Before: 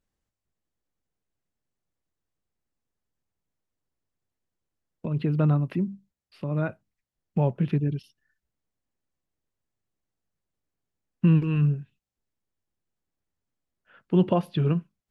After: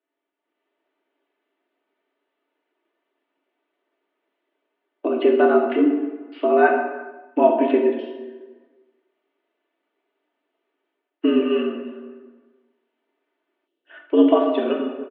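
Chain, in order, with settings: plate-style reverb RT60 1.2 s, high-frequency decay 0.7×, DRR 0.5 dB; level rider gain up to 13 dB; comb 3.6 ms, depth 55%; mistuned SSB +94 Hz 180–3200 Hz; time-frequency box 13.67–13.90 s, 590–2600 Hz -11 dB

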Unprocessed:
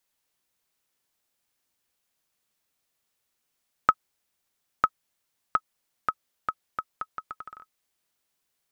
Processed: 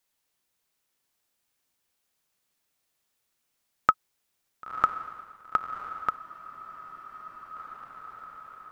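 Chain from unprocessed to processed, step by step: echo that smears into a reverb 1007 ms, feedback 57%, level -8.5 dB; spectral freeze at 6.21 s, 1.35 s

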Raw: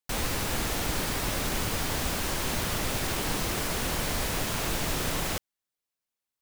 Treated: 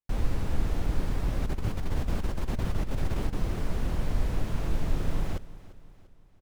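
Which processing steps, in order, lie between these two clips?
tilt EQ -3.5 dB/octave; 1.42–3.33 s: compressor with a negative ratio -17 dBFS, ratio -0.5; feedback delay 345 ms, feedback 48%, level -18 dB; trim -8.5 dB

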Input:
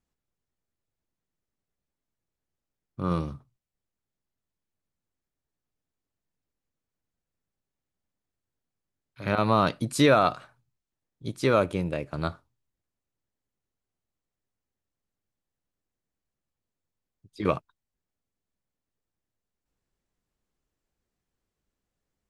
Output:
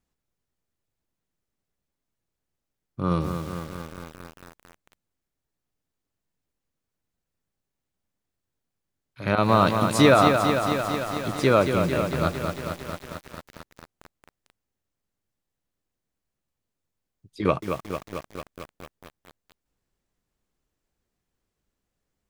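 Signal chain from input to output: bit-crushed delay 224 ms, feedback 80%, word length 7-bit, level -6 dB; trim +3 dB

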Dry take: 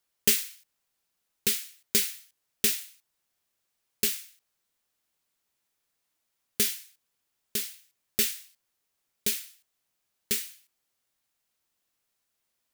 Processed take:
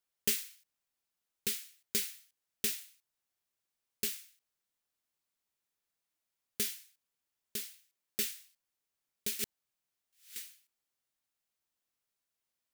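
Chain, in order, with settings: 7.61–8.23 s: high-pass 130 Hz; 9.39–10.36 s: reverse; trim -8.5 dB

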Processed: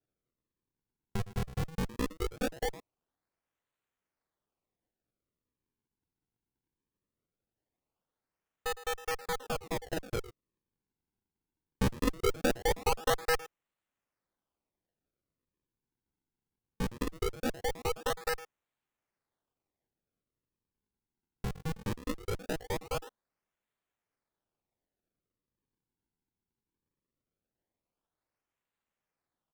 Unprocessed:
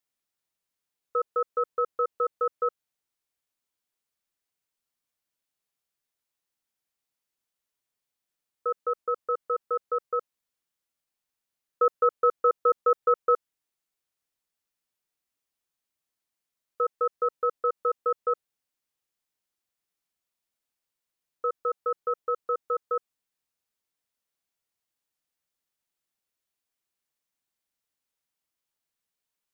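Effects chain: comb filter that takes the minimum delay 2.6 ms; speakerphone echo 110 ms, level -15 dB; decimation with a swept rate 41×, swing 160% 0.2 Hz; trim -4 dB

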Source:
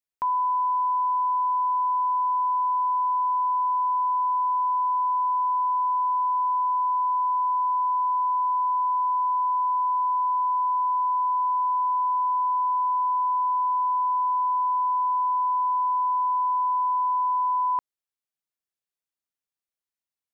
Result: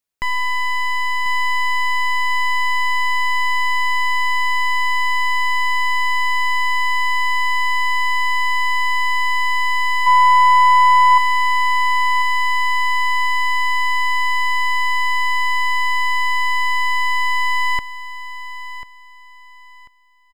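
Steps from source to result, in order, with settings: one-sided wavefolder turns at -31.5 dBFS; 10.06–11.18 s: small resonant body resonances 1 kHz, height 13 dB; on a send: feedback delay 1042 ms, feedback 26%, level -13.5 dB; on the sum: trim +7.5 dB

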